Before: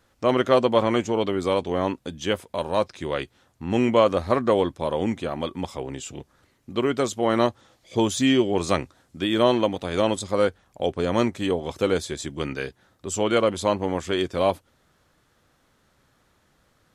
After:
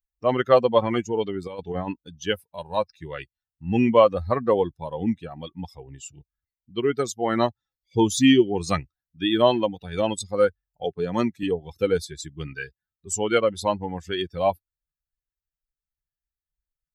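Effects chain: expander on every frequency bin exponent 2; 1.47–2.00 s: compressor with a negative ratio -34 dBFS, ratio -0.5; 10.85–11.43 s: high-pass 150 Hz 12 dB/octave; trim +5 dB

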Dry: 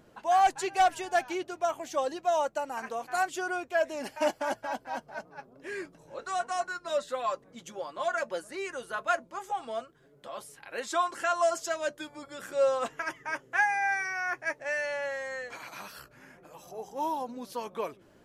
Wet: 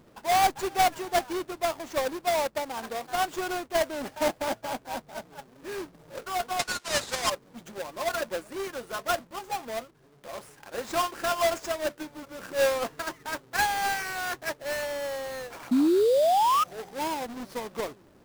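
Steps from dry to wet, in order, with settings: square wave that keeps the level; 6.59–7.30 s: frequency weighting ITU-R 468; 15.71–16.64 s: painted sound rise 240–1300 Hz -19 dBFS; in parallel at -4 dB: sample-rate reducer 4.2 kHz, jitter 20%; on the sum: trim -6 dB

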